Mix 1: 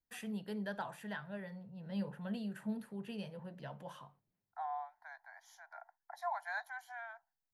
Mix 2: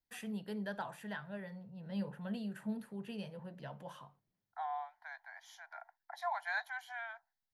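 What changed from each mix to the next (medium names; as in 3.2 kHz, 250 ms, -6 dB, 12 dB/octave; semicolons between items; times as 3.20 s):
second voice: add peaking EQ 2.9 kHz +12 dB 1.1 oct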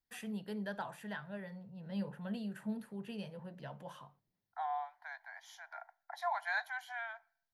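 reverb: on, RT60 0.60 s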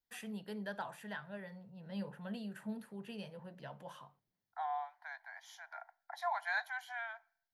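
master: add bass shelf 320 Hz -4.5 dB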